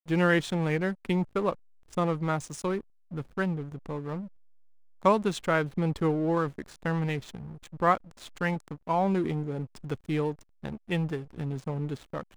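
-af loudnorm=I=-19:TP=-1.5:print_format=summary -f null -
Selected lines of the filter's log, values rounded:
Input Integrated:    -30.3 LUFS
Input True Peak:      -9.4 dBTP
Input LRA:             5.1 LU
Input Threshold:     -40.7 LUFS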